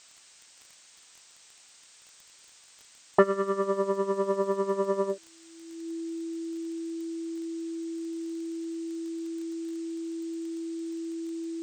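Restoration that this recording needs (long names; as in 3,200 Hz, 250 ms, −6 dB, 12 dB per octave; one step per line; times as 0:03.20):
click removal
notch filter 330 Hz, Q 30
noise reduction from a noise print 21 dB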